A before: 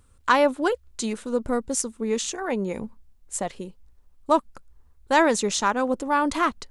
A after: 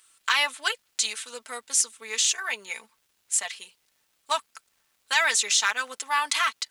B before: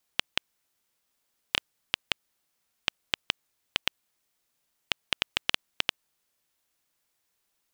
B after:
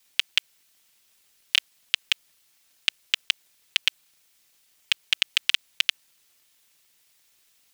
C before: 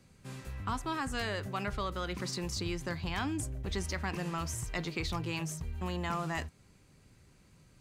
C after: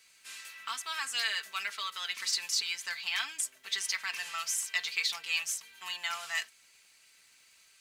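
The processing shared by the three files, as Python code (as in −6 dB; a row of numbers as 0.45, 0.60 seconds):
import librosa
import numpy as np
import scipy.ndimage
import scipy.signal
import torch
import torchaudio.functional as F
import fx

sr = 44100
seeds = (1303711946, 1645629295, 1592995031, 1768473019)

p1 = scipy.signal.sosfilt(scipy.signal.cheby1(2, 1.0, 2400.0, 'highpass', fs=sr, output='sos'), x)
p2 = p1 + 0.64 * np.pad(p1, (int(4.5 * sr / 1000.0), 0))[:len(p1)]
p3 = fx.over_compress(p2, sr, threshold_db=-31.0, ratio=-0.5)
p4 = p2 + (p3 * 10.0 ** (-2.0 / 20.0))
p5 = fx.quant_float(p4, sr, bits=4)
p6 = fx.dmg_crackle(p5, sr, seeds[0], per_s=450.0, level_db=-61.0)
y = p6 * 10.0 ** (3.0 / 20.0)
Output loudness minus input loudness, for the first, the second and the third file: −0.5, +6.0, +3.5 LU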